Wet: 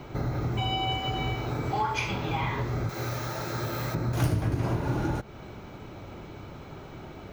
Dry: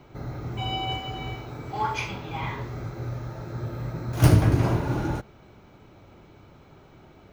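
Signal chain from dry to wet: 2.89–3.95 tilt +3 dB/oct; compressor 4:1, threshold -35 dBFS, peak gain reduction 19.5 dB; gain +8.5 dB

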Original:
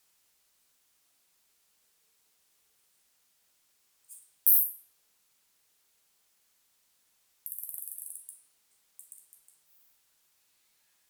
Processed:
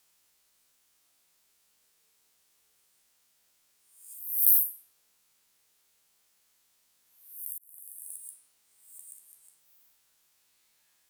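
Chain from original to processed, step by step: spectral swells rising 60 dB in 0.66 s; 7.52–8.1 auto swell 0.694 s; gain -1 dB

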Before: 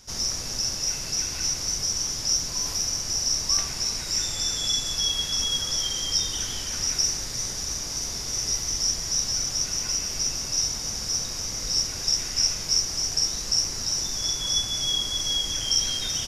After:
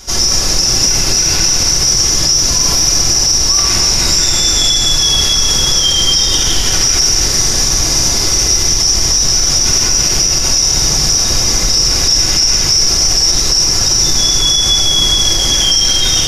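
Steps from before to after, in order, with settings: reverb RT60 1.8 s, pre-delay 3 ms, DRR -3.5 dB; maximiser +15.5 dB; gain -1 dB

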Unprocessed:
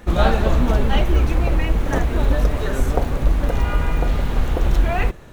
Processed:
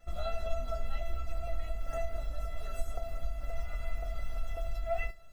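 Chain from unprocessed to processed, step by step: compressor, threshold -15 dBFS, peak gain reduction 6 dB; resonator 670 Hz, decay 0.21 s, harmonics all, mix 100%; gain +2 dB

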